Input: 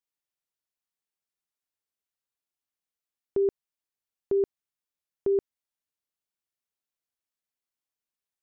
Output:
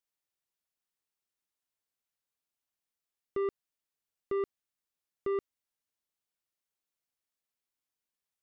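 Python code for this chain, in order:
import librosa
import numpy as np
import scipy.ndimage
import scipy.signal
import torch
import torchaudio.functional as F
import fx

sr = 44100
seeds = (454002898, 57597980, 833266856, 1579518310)

y = 10.0 ** (-28.5 / 20.0) * np.tanh(x / 10.0 ** (-28.5 / 20.0))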